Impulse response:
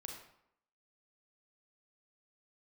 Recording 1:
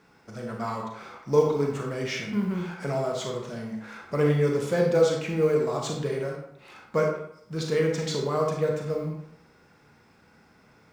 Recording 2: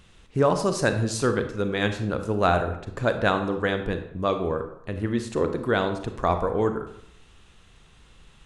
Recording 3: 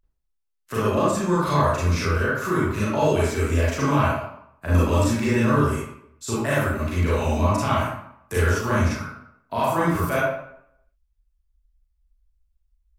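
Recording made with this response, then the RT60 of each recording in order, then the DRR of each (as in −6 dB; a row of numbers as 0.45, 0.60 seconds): 1; 0.75, 0.75, 0.75 seconds; 1.0, 7.0, −8.5 decibels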